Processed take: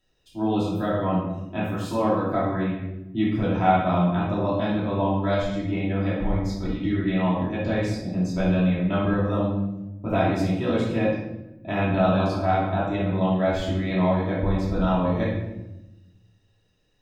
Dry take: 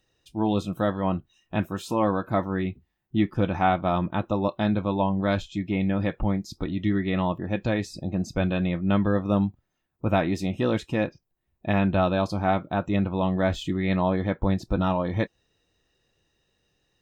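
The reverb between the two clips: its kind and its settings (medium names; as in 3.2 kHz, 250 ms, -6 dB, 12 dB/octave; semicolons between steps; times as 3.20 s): simulated room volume 370 m³, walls mixed, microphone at 2.9 m; trim -7 dB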